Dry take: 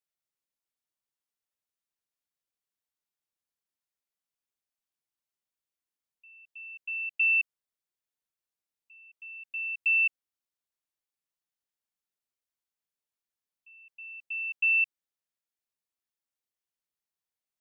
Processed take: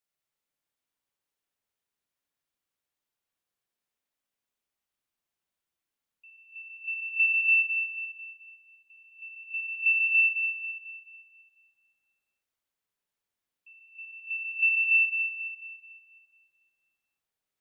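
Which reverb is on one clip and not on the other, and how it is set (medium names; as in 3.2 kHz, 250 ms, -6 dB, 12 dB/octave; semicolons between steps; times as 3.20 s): spring tank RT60 2 s, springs 53/60 ms, chirp 30 ms, DRR -1.5 dB; trim +2 dB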